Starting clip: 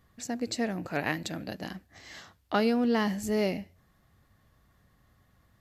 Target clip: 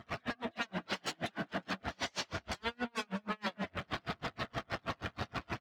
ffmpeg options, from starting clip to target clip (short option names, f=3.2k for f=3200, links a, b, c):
-filter_complex "[0:a]aeval=exprs='val(0)+0.5*0.0335*sgn(val(0))':c=same,acrossover=split=3100[a][b];[a]acompressor=threshold=-33dB:ratio=6[c];[c][b]amix=inputs=2:normalize=0,equalizer=f=1.6k:w=0.93:g=6,aresample=8000,aresample=44100,equalizer=f=670:w=5.1:g=14,aeval=exprs='0.02*(abs(mod(val(0)/0.02+3,4)-2)-1)':c=same,afftdn=nr=15:nf=-43,flanger=delay=8.7:depth=1:regen=-84:speed=0.46:shape=triangular,highpass=f=250:p=1,asplit=2[d][e];[e]adelay=202,lowpass=f=3.1k:p=1,volume=-7.5dB,asplit=2[f][g];[g]adelay=202,lowpass=f=3.1k:p=1,volume=0.33,asplit=2[h][i];[i]adelay=202,lowpass=f=3.1k:p=1,volume=0.33,asplit=2[j][k];[k]adelay=202,lowpass=f=3.1k:p=1,volume=0.33[l];[f][h][j][l]amix=inputs=4:normalize=0[m];[d][m]amix=inputs=2:normalize=0,acontrast=40,aeval=exprs='val(0)*pow(10,-39*(0.5-0.5*cos(2*PI*6.3*n/s))/20)':c=same,volume=7dB"